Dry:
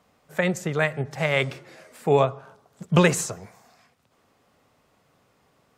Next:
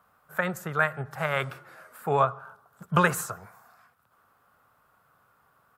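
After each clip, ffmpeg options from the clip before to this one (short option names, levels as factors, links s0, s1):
-af "firequalizer=gain_entry='entry(120,0);entry(270,-6);entry(1400,14);entry(2000,-2);entry(6200,-6);entry(12000,10)':delay=0.05:min_phase=1,volume=0.562"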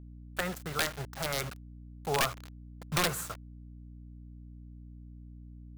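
-af "aeval=exprs='(mod(5.01*val(0)+1,2)-1)/5.01':c=same,acrusher=bits=5:mix=0:aa=0.000001,aeval=exprs='val(0)+0.00891*(sin(2*PI*60*n/s)+sin(2*PI*2*60*n/s)/2+sin(2*PI*3*60*n/s)/3+sin(2*PI*4*60*n/s)/4+sin(2*PI*5*60*n/s)/5)':c=same,volume=0.531"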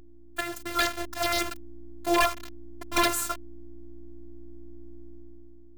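-af "dynaudnorm=f=120:g=11:m=2.51,afftfilt=real='hypot(re,im)*cos(PI*b)':imag='0':win_size=512:overlap=0.75,asoftclip=type=hard:threshold=0.2,volume=1.58"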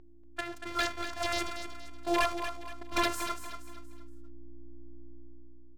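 -af "adynamicsmooth=sensitivity=4.5:basefreq=2900,aecho=1:1:236|472|708|944:0.355|0.131|0.0486|0.018,volume=0.562"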